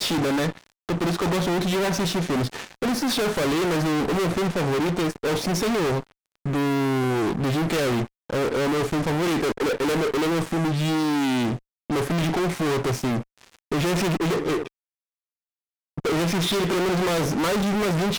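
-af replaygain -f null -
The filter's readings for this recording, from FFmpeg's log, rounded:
track_gain = +6.8 dB
track_peak = 0.082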